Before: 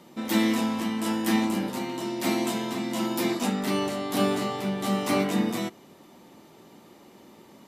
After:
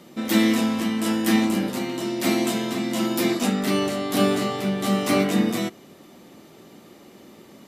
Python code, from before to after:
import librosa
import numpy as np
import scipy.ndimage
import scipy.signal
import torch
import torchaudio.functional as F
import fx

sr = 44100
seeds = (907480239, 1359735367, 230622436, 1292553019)

y = fx.peak_eq(x, sr, hz=920.0, db=-7.5, octaves=0.33)
y = y * 10.0 ** (4.5 / 20.0)